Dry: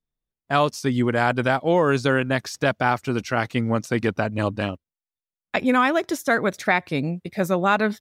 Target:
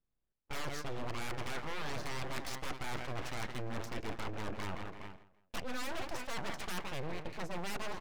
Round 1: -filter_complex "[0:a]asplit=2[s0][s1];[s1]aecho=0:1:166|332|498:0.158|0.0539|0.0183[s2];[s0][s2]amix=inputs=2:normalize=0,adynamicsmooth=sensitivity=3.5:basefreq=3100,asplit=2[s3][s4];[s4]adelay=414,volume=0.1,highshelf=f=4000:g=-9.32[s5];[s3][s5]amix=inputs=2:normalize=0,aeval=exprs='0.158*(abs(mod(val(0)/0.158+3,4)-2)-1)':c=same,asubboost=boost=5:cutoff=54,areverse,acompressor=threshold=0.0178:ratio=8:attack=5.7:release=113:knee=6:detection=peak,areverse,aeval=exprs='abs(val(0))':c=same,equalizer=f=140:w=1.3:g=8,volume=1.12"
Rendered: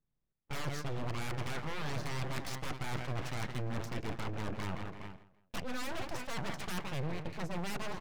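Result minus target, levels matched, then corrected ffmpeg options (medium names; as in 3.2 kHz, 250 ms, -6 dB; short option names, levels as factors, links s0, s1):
125 Hz band +4.5 dB
-filter_complex "[0:a]asplit=2[s0][s1];[s1]aecho=0:1:166|332|498:0.158|0.0539|0.0183[s2];[s0][s2]amix=inputs=2:normalize=0,adynamicsmooth=sensitivity=3.5:basefreq=3100,asplit=2[s3][s4];[s4]adelay=414,volume=0.1,highshelf=f=4000:g=-9.32[s5];[s3][s5]amix=inputs=2:normalize=0,aeval=exprs='0.158*(abs(mod(val(0)/0.158+3,4)-2)-1)':c=same,asubboost=boost=5:cutoff=54,areverse,acompressor=threshold=0.0178:ratio=8:attack=5.7:release=113:knee=6:detection=peak,areverse,aeval=exprs='abs(val(0))':c=same,volume=1.12"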